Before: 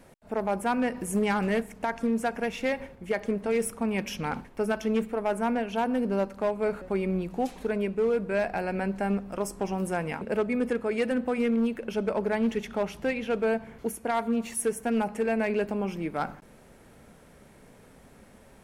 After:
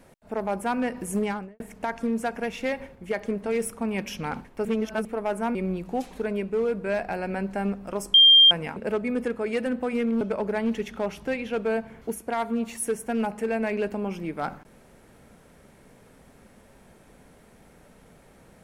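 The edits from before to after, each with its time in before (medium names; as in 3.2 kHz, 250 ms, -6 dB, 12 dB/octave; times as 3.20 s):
1.17–1.60 s: studio fade out
4.65–5.05 s: reverse
5.55–7.00 s: delete
9.59–9.96 s: bleep 3.19 kHz -10.5 dBFS
11.66–11.98 s: delete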